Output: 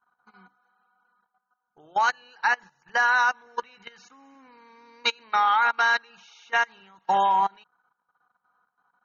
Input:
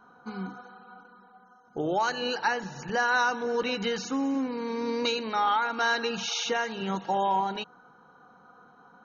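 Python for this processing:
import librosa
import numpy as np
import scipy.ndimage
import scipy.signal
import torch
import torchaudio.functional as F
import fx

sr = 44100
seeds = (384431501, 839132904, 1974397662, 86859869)

y = fx.graphic_eq_10(x, sr, hz=(125, 250, 500, 1000, 2000), db=(-4, -7, -6, 6, 7))
y = fx.level_steps(y, sr, step_db=13)
y = fx.upward_expand(y, sr, threshold_db=-41.0, expansion=2.5)
y = y * 10.0 ** (7.0 / 20.0)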